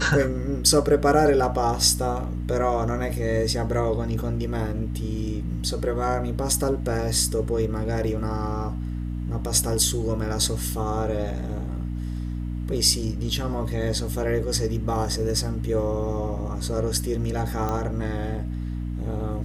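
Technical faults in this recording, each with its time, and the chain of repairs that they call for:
hum 60 Hz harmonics 5 -29 dBFS
17.69 pop -15 dBFS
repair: de-click; de-hum 60 Hz, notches 5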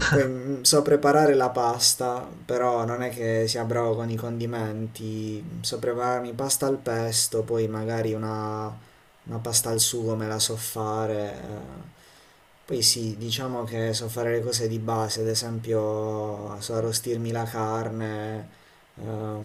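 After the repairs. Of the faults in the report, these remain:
none

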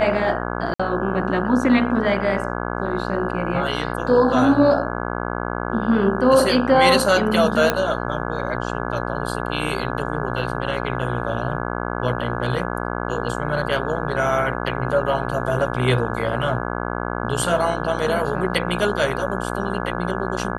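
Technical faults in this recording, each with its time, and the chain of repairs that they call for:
buzz 60 Hz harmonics 28 -26 dBFS
0.74–0.8 gap 55 ms
7.7 pop -3 dBFS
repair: de-click; de-hum 60 Hz, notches 28; interpolate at 0.74, 55 ms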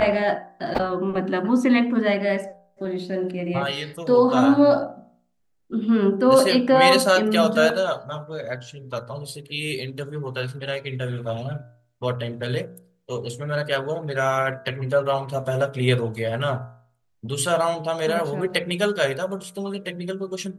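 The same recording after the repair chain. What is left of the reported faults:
none

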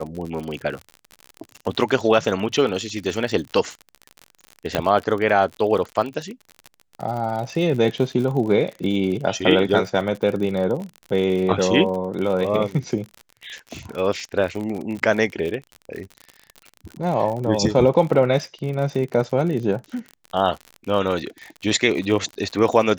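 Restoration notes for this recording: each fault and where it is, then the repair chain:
crackle 53/s -28 dBFS
4.75 pop -6 dBFS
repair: de-click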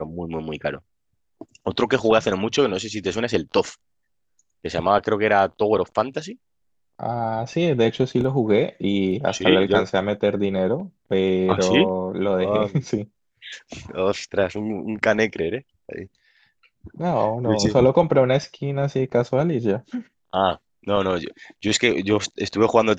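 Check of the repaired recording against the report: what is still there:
none

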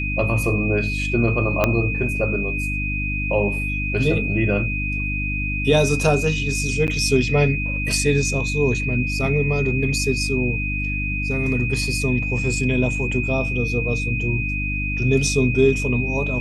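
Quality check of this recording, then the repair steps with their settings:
hum 50 Hz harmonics 6 -26 dBFS
tone 2500 Hz -25 dBFS
1.64 pop -4 dBFS
6.87–6.88 gap 9 ms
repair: de-click; de-hum 50 Hz, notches 6; notch 2500 Hz, Q 30; interpolate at 6.87, 9 ms

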